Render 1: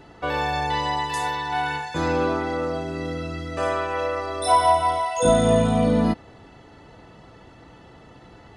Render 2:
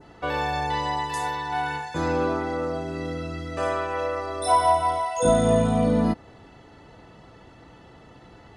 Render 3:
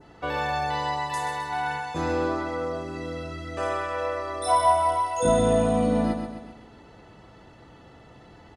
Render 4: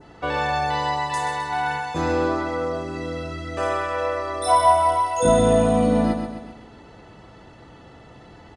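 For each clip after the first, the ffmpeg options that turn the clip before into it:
ffmpeg -i in.wav -af "adynamicequalizer=threshold=0.00891:dfrequency=3100:dqfactor=0.99:tfrequency=3100:tqfactor=0.99:attack=5:release=100:ratio=0.375:range=2:mode=cutabove:tftype=bell,volume=-1.5dB" out.wav
ffmpeg -i in.wav -af "aecho=1:1:131|262|393|524|655|786:0.447|0.214|0.103|0.0494|0.0237|0.0114,volume=-2dB" out.wav
ffmpeg -i in.wav -af "aresample=22050,aresample=44100,volume=4dB" out.wav

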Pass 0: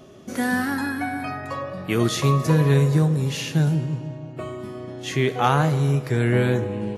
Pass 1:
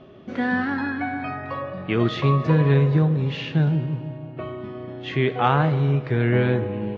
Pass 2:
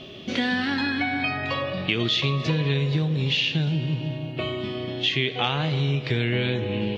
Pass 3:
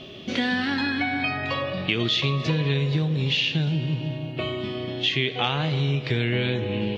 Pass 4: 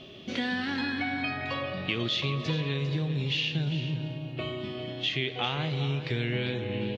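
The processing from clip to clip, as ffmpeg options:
ffmpeg -i in.wav -af "lowpass=frequency=3500:width=0.5412,lowpass=frequency=3500:width=1.3066" out.wav
ffmpeg -i in.wav -af "highshelf=frequency=2100:width_type=q:width=1.5:gain=13.5,acompressor=threshold=-26dB:ratio=4,volume=4dB" out.wav
ffmpeg -i in.wav -af anull out.wav
ffmpeg -i in.wav -af "aecho=1:1:399:0.266,volume=-6dB" out.wav

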